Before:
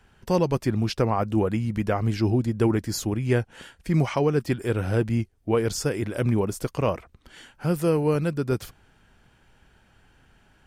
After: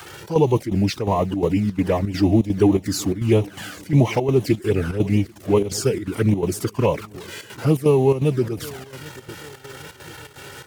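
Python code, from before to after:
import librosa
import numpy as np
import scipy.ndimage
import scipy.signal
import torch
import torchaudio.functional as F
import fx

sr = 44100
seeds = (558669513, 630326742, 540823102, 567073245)

y = x + 0.5 * 10.0 ** (-35.0 / 20.0) * np.sign(x)
y = scipy.signal.sosfilt(scipy.signal.butter(4, 110.0, 'highpass', fs=sr, output='sos'), y)
y = fx.env_flanger(y, sr, rest_ms=2.4, full_db=-18.5)
y = fx.pitch_keep_formants(y, sr, semitones=-2.0)
y = fx.echo_feedback(y, sr, ms=788, feedback_pct=49, wet_db=-20.5)
y = fx.chopper(y, sr, hz=2.8, depth_pct=65, duty_pct=75)
y = F.gain(torch.from_numpy(y), 6.5).numpy()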